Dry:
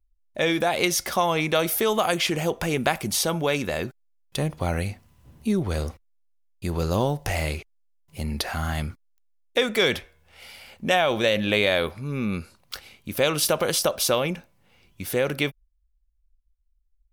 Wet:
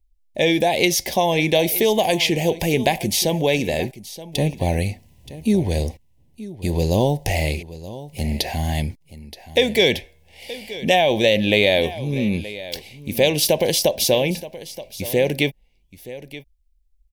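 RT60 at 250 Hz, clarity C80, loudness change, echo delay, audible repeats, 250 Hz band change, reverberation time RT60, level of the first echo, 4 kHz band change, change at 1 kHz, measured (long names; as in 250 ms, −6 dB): no reverb audible, no reverb audible, +4.5 dB, 925 ms, 1, +5.5 dB, no reverb audible, −16.0 dB, +5.0 dB, +2.5 dB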